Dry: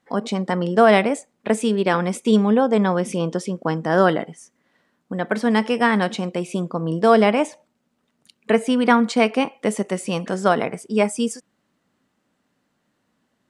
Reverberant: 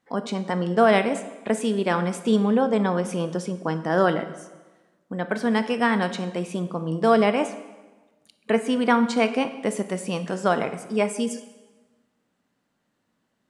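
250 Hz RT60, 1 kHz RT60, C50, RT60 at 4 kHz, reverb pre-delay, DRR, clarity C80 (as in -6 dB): 1.3 s, 1.2 s, 12.5 dB, 1.1 s, 16 ms, 10.5 dB, 14.0 dB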